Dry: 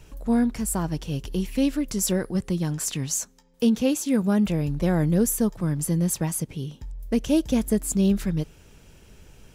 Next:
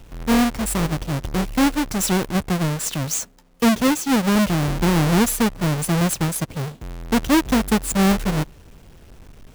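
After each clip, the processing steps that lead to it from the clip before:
each half-wave held at its own peak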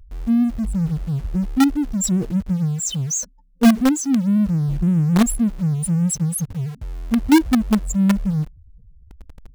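expanding power law on the bin magnitudes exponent 3.5
in parallel at −10 dB: log-companded quantiser 2 bits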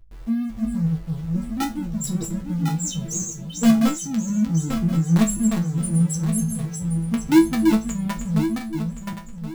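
feedback delay that plays each chunk backwards 537 ms, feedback 50%, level −5 dB
resonators tuned to a chord A2 fifth, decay 0.24 s
level +7.5 dB

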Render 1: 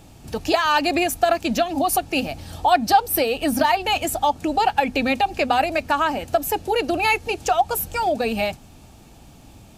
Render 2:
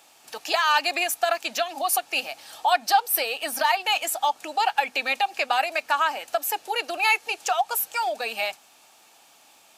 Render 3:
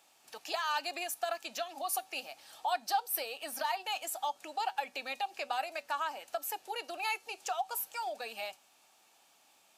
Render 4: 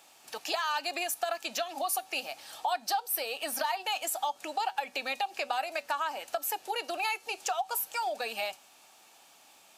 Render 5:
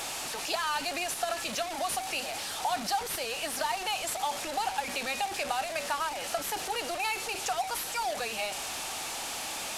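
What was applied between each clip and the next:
high-pass filter 890 Hz 12 dB per octave
dynamic equaliser 2,100 Hz, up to −5 dB, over −34 dBFS, Q 1.2; tuned comb filter 190 Hz, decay 0.28 s, harmonics all, mix 40%; level −7 dB
downward compressor 2.5 to 1, threshold −37 dBFS, peak gain reduction 8 dB; level +7.5 dB
linear delta modulator 64 kbit/s, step −30 dBFS

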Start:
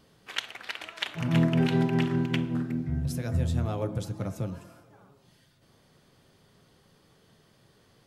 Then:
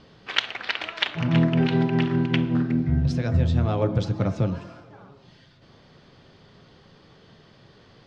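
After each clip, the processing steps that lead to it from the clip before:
low-pass filter 5,100 Hz 24 dB per octave
speech leveller within 3 dB 0.5 s
level +6 dB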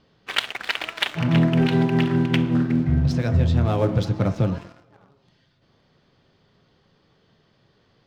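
leveller curve on the samples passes 2
level −5 dB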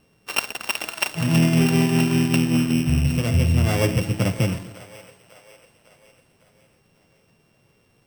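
samples sorted by size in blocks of 16 samples
echo with a time of its own for lows and highs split 480 Hz, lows 133 ms, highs 551 ms, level −16 dB

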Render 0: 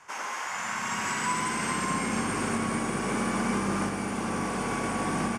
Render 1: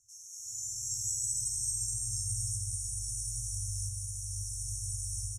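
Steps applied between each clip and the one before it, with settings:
brick-wall band-stop 120–5,400 Hz
automatic gain control gain up to 10 dB
level −5 dB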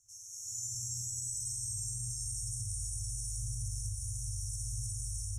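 spring reverb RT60 2 s, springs 58 ms, chirp 30 ms, DRR −8 dB
brickwall limiter −29 dBFS, peak gain reduction 8 dB

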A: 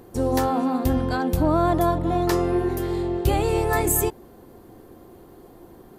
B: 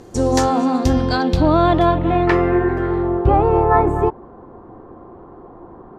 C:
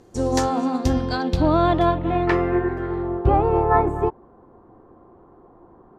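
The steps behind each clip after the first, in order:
low-pass filter sweep 6,700 Hz → 1,100 Hz, 0:00.69–0:03.33; level +5.5 dB
expander for the loud parts 1.5 to 1, over −26 dBFS; level −2 dB

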